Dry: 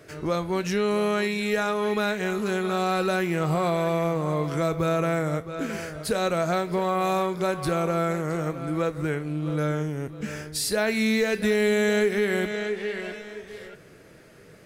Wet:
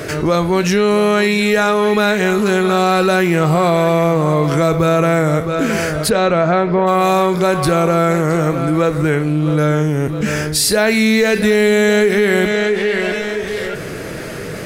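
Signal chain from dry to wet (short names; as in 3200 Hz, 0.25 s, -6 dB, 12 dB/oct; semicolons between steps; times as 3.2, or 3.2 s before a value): 6.09–6.86 LPF 4100 Hz -> 1900 Hz 12 dB/oct; fast leveller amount 50%; gain +8.5 dB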